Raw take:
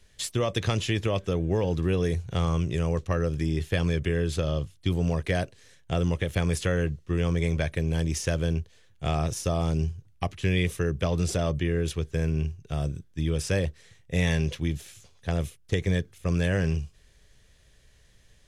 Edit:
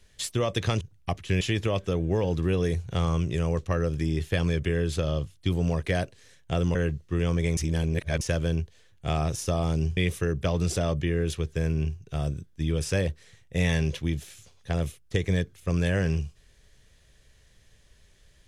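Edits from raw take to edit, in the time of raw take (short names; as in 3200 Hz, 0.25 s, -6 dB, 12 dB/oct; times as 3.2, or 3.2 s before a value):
6.15–6.73 cut
7.55–8.19 reverse
9.95–10.55 move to 0.81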